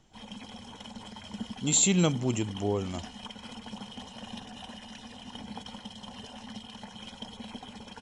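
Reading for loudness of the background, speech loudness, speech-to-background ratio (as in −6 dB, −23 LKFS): −43.0 LKFS, −27.0 LKFS, 16.0 dB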